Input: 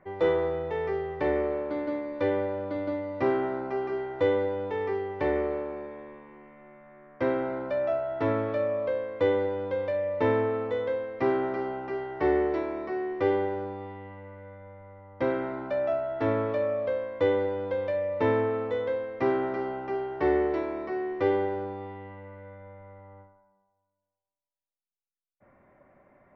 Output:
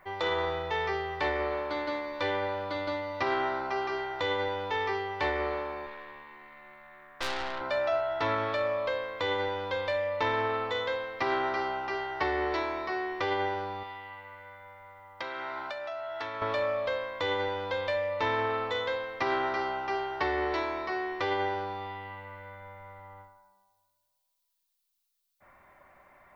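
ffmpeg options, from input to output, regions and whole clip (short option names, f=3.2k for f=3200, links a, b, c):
-filter_complex "[0:a]asettb=1/sr,asplit=3[a][b][c];[a]atrim=end=5.864[d];[b]atrim=start=5.86:end=7.61,asetpts=PTS-STARTPTS,afade=t=in:d=0.004:c=qsin,afade=t=out:st=1.746:d=0.004:c=qsin,equalizer=f=1.8k:t=o:w=0.34:g=4.5,aeval=exprs='(tanh(44.7*val(0)+0.6)-tanh(0.6))/44.7':c=same[e];[c]atrim=start=7.606[f];[d][e]acrossfade=d=0.004:c1=hsin:c2=qsin[g];[g][f]acrossfade=d=0.004:c1=qsin:c2=hsin,asettb=1/sr,asplit=3[h][i][j];[h]atrim=end=13.834[k];[i]atrim=start=13.83:end=16.42,asetpts=PTS-STARTPTS,afade=t=in:d=0.004:c=qsin,afade=t=out:st=2.586:d=0.004:c=qsin,lowshelf=f=450:g=-10,acompressor=threshold=-35dB:ratio=5:attack=3.2:release=140:knee=1:detection=peak[l];[j]atrim=start=16.416[m];[k][l]acrossfade=d=0.004:c1=hsin:c2=qsin[n];[n][m]acrossfade=d=0.004:c1=qsin:c2=hsin,aemphasis=mode=production:type=50kf,alimiter=limit=-20.5dB:level=0:latency=1:release=16,equalizer=f=125:t=o:w=1:g=-8,equalizer=f=250:t=o:w=1:g=-10,equalizer=f=500:t=o:w=1:g=-7,equalizer=f=1k:t=o:w=1:g=4,equalizer=f=4k:t=o:w=1:g=8,volume=4dB"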